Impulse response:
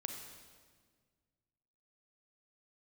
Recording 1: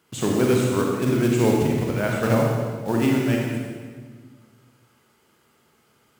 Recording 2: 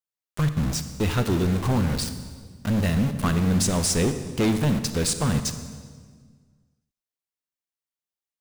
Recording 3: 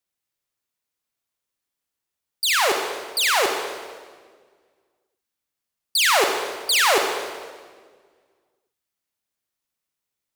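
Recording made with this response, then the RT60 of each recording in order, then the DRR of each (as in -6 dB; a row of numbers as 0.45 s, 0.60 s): 3; 1.7 s, 1.7 s, 1.7 s; -1.5 dB, 9.0 dB, 3.5 dB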